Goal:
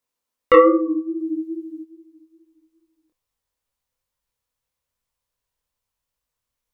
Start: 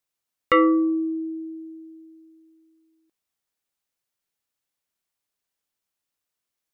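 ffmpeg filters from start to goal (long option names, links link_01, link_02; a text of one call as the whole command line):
ffmpeg -i in.wav -filter_complex "[0:a]equalizer=frequency=250:width_type=o:width=0.33:gain=8,equalizer=frequency=500:width_type=o:width=0.33:gain=10,equalizer=frequency=1000:width_type=o:width=0.33:gain=8,flanger=delay=19.5:depth=6.8:speed=2.4,asubboost=boost=11:cutoff=84,asplit=3[link_01][link_02][link_03];[link_01]afade=type=out:start_time=1.19:duration=0.02[link_04];[link_02]acontrast=69,afade=type=in:start_time=1.19:duration=0.02,afade=type=out:start_time=1.83:duration=0.02[link_05];[link_03]afade=type=in:start_time=1.83:duration=0.02[link_06];[link_04][link_05][link_06]amix=inputs=3:normalize=0,volume=3.5dB" out.wav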